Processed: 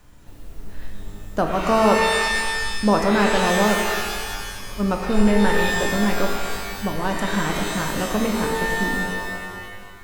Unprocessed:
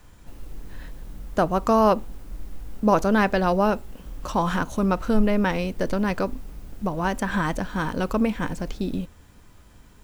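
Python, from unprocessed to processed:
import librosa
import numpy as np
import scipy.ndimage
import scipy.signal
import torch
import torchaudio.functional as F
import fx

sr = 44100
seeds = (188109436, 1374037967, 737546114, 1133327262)

y = fx.spec_freeze(x, sr, seeds[0], at_s=4.23, hold_s=0.57)
y = fx.rev_shimmer(y, sr, seeds[1], rt60_s=1.7, semitones=12, shimmer_db=-2, drr_db=3.0)
y = y * librosa.db_to_amplitude(-1.0)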